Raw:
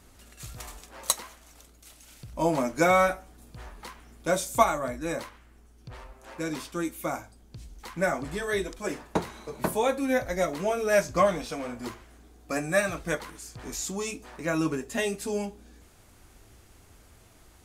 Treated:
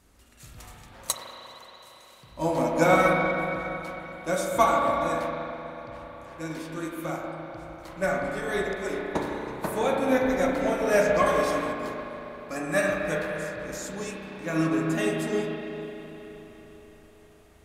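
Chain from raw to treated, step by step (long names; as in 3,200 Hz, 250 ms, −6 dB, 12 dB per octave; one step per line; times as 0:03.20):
convolution reverb RT60 4.5 s, pre-delay 31 ms, DRR −3.5 dB
in parallel at −9 dB: soft clipping −21.5 dBFS, distortion −10 dB
0:01.14–0:02.32: on the sum: high-pass filter 160 Hz 6 dB per octave
0:11.26–0:11.73: high-shelf EQ 6,000 Hz +10 dB
expander for the loud parts 1.5 to 1, over −29 dBFS
level −1.5 dB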